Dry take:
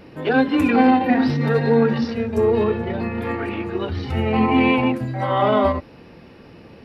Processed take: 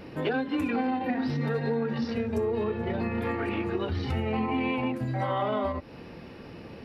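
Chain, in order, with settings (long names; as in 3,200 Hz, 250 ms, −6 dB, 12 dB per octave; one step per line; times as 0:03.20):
downward compressor 6 to 1, threshold −26 dBFS, peak gain reduction 14.5 dB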